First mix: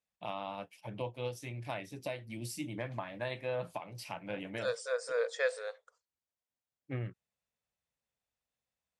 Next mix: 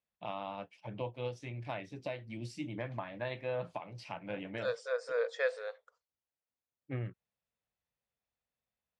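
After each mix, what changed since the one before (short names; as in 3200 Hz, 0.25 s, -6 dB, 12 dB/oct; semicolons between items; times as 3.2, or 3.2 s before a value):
master: add air absorption 120 m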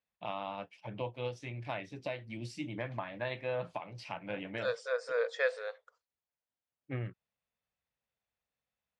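master: add bell 2300 Hz +3 dB 2.9 oct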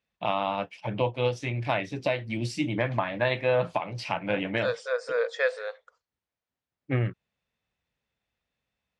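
first voice +11.5 dB; second voice +5.0 dB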